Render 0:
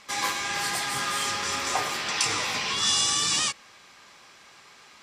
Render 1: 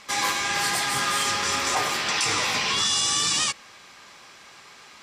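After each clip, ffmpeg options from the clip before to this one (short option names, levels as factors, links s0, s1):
-af "alimiter=limit=0.126:level=0:latency=1:release=13,volume=1.58"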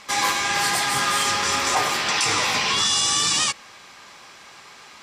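-af "equalizer=f=870:t=o:w=0.77:g=2,volume=1.33"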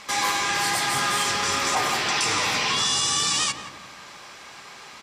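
-filter_complex "[0:a]asplit=2[s0][s1];[s1]alimiter=limit=0.0891:level=0:latency=1,volume=1.41[s2];[s0][s2]amix=inputs=2:normalize=0,asplit=2[s3][s4];[s4]adelay=175,lowpass=f=1100:p=1,volume=0.501,asplit=2[s5][s6];[s6]adelay=175,lowpass=f=1100:p=1,volume=0.53,asplit=2[s7][s8];[s8]adelay=175,lowpass=f=1100:p=1,volume=0.53,asplit=2[s9][s10];[s10]adelay=175,lowpass=f=1100:p=1,volume=0.53,asplit=2[s11][s12];[s12]adelay=175,lowpass=f=1100:p=1,volume=0.53,asplit=2[s13][s14];[s14]adelay=175,lowpass=f=1100:p=1,volume=0.53,asplit=2[s15][s16];[s16]adelay=175,lowpass=f=1100:p=1,volume=0.53[s17];[s3][s5][s7][s9][s11][s13][s15][s17]amix=inputs=8:normalize=0,volume=0.501"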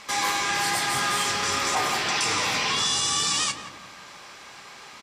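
-filter_complex "[0:a]asplit=2[s0][s1];[s1]adelay=32,volume=0.211[s2];[s0][s2]amix=inputs=2:normalize=0,volume=0.841"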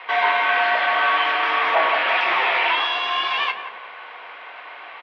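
-af "highpass=f=590:t=q:w=0.5412,highpass=f=590:t=q:w=1.307,lowpass=f=3100:t=q:w=0.5176,lowpass=f=3100:t=q:w=0.7071,lowpass=f=3100:t=q:w=1.932,afreqshift=-100,volume=2.51"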